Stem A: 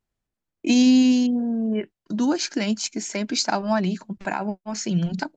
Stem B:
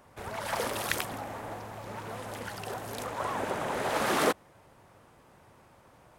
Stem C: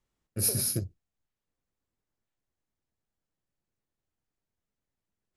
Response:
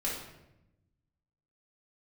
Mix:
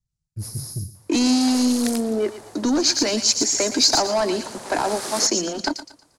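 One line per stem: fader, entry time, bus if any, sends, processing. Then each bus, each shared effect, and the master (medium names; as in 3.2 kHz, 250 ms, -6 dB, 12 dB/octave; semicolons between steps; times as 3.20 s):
-0.5 dB, 0.45 s, bus A, no send, echo send -18.5 dB, steep high-pass 260 Hz 48 dB/octave; waveshaping leveller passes 3
-6.5 dB, 0.95 s, no bus, no send, no echo send, none
+3.0 dB, 0.00 s, bus A, no send, echo send -18 dB, FFT filter 140 Hz 0 dB, 260 Hz -27 dB, 6.6 kHz -5 dB; valve stage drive 32 dB, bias 0.35; peaking EQ 190 Hz +9.5 dB 1.8 oct
bus A: 0.0 dB, low-pass 1.3 kHz 6 dB/octave; compression 2.5:1, threshold -19 dBFS, peak gain reduction 4.5 dB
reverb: none
echo: feedback delay 116 ms, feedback 29%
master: high-order bell 6.7 kHz +15 dB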